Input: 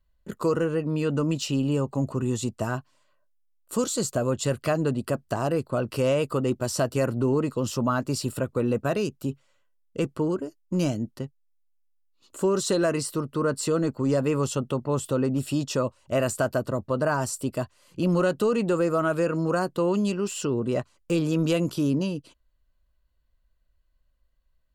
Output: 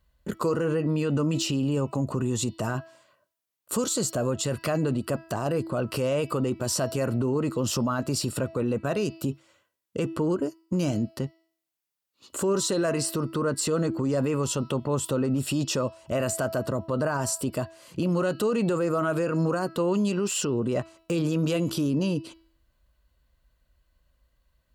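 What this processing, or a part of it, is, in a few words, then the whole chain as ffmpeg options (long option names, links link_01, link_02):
stacked limiters: -filter_complex "[0:a]highpass=44,bandreject=frequency=327.5:width_type=h:width=4,bandreject=frequency=655:width_type=h:width=4,bandreject=frequency=982.5:width_type=h:width=4,bandreject=frequency=1310:width_type=h:width=4,bandreject=frequency=1637.5:width_type=h:width=4,bandreject=frequency=1965:width_type=h:width=4,bandreject=frequency=2292.5:width_type=h:width=4,bandreject=frequency=2620:width_type=h:width=4,bandreject=frequency=2947.5:width_type=h:width=4,bandreject=frequency=3275:width_type=h:width=4,bandreject=frequency=3602.5:width_type=h:width=4,bandreject=frequency=3930:width_type=h:width=4,bandreject=frequency=4257.5:width_type=h:width=4,bandreject=frequency=4585:width_type=h:width=4,bandreject=frequency=4912.5:width_type=h:width=4,bandreject=frequency=5240:width_type=h:width=4,bandreject=frequency=5567.5:width_type=h:width=4,asettb=1/sr,asplit=3[link_01][link_02][link_03];[link_01]atrim=end=8.254[link_04];[link_02]atrim=start=8.25:end=9.02,asetpts=PTS-STARTPTS,afade=type=in:duration=0.004:curve=qsin,afade=type=out:start_time=0.766:duration=0.004:curve=qsin,lowpass=12000[link_05];[link_03]atrim=start=9.016[link_06];[link_04][link_05]acrossfade=duration=0.004:curve1=hsin:curve2=qsin[link_07];[link_07][link_06]acrossfade=duration=0.004:curve1=qsin:curve2=hsin,alimiter=limit=-18dB:level=0:latency=1:release=17,alimiter=limit=-22.5dB:level=0:latency=1:release=200,alimiter=level_in=2dB:limit=-24dB:level=0:latency=1:release=63,volume=-2dB,volume=8dB"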